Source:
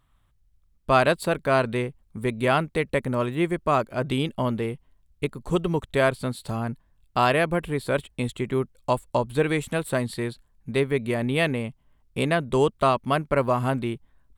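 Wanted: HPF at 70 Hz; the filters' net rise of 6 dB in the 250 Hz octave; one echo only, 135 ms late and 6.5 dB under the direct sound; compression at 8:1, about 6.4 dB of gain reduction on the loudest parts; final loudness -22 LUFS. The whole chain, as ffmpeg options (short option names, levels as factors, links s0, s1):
-af "highpass=70,equalizer=f=250:t=o:g=7.5,acompressor=threshold=0.1:ratio=8,aecho=1:1:135:0.473,volume=1.58"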